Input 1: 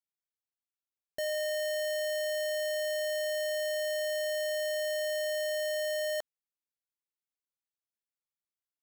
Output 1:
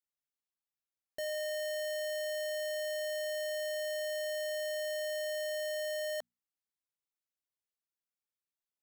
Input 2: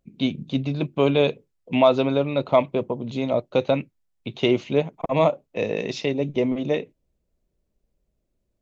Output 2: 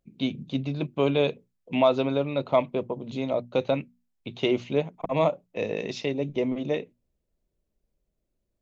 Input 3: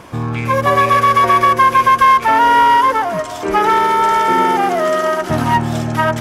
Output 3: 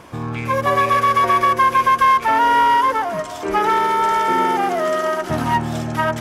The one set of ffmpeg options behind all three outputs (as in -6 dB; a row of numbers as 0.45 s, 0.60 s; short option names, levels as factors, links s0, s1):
-af "bandreject=f=60:t=h:w=6,bandreject=f=120:t=h:w=6,bandreject=f=180:t=h:w=6,bandreject=f=240:t=h:w=6,volume=0.631"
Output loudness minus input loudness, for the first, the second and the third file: -4.0 LU, -4.0 LU, -4.0 LU